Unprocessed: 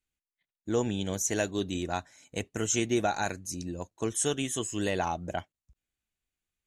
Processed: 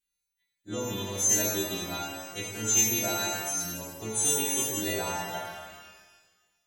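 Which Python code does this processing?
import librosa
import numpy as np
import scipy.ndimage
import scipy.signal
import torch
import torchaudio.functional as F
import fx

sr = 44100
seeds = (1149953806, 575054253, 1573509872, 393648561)

y = fx.freq_snap(x, sr, grid_st=2)
y = fx.echo_tape(y, sr, ms=87, feedback_pct=71, wet_db=-20.0, lp_hz=4800.0, drive_db=4.0, wow_cents=9)
y = fx.rev_shimmer(y, sr, seeds[0], rt60_s=1.3, semitones=12, shimmer_db=-8, drr_db=-3.0)
y = F.gain(torch.from_numpy(y), -6.5).numpy()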